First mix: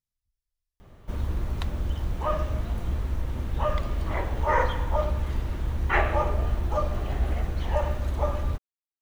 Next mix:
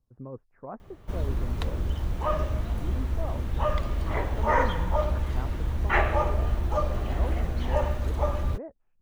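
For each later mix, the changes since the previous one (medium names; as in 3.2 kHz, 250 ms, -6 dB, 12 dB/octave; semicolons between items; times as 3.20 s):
speech: unmuted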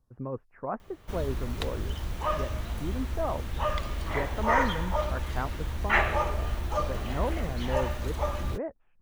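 speech +9.0 dB; master: add tilt shelf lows -5 dB, about 1.2 kHz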